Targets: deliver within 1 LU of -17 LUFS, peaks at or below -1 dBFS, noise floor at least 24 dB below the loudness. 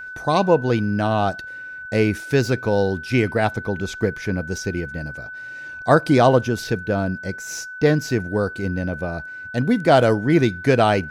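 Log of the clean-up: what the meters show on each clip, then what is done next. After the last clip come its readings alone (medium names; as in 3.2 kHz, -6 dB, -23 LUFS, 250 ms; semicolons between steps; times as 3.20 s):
steady tone 1.5 kHz; tone level -32 dBFS; loudness -20.5 LUFS; peak level -2.0 dBFS; loudness target -17.0 LUFS
-> band-stop 1.5 kHz, Q 30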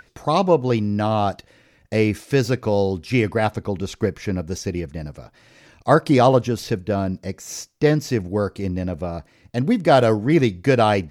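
steady tone not found; loudness -20.5 LUFS; peak level -2.0 dBFS; loudness target -17.0 LUFS
-> trim +3.5 dB; peak limiter -1 dBFS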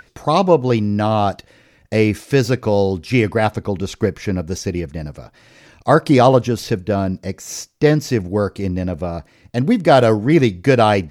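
loudness -17.5 LUFS; peak level -1.0 dBFS; noise floor -54 dBFS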